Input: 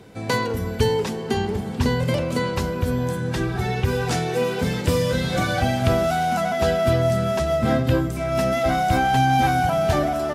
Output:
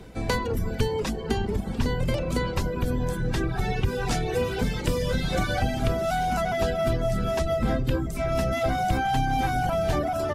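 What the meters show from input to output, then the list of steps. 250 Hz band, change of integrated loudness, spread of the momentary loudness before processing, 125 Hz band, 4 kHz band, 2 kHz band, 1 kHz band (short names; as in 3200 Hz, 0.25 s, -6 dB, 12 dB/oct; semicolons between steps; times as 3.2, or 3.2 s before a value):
-5.0 dB, -4.5 dB, 5 LU, -4.5 dB, -5.0 dB, -5.0 dB, -5.5 dB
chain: octaver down 2 oct, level +1 dB; reverb removal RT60 0.65 s; compressor 3:1, threshold -22 dBFS, peak gain reduction 8.5 dB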